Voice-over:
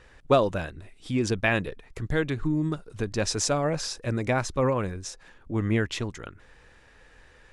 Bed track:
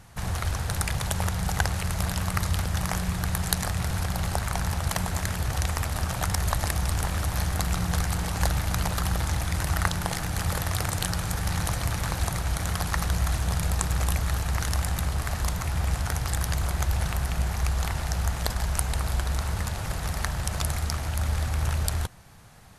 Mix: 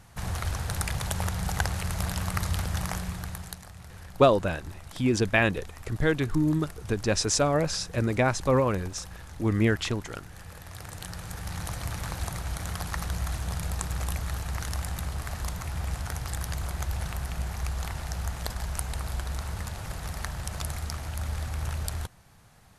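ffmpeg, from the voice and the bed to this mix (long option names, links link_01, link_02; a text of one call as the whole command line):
ffmpeg -i stem1.wav -i stem2.wav -filter_complex "[0:a]adelay=3900,volume=1.5dB[link_01];[1:a]volume=10dB,afade=type=out:start_time=2.76:duration=0.85:silence=0.16788,afade=type=in:start_time=10.57:duration=1.38:silence=0.237137[link_02];[link_01][link_02]amix=inputs=2:normalize=0" out.wav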